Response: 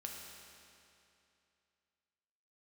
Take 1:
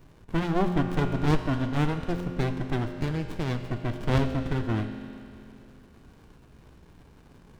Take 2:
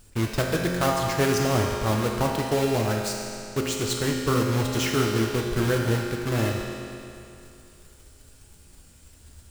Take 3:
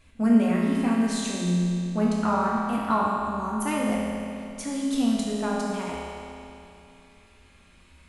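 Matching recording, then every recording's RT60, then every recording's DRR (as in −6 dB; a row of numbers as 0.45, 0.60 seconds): 2; 2.7, 2.7, 2.7 seconds; 6.0, −0.5, −5.0 decibels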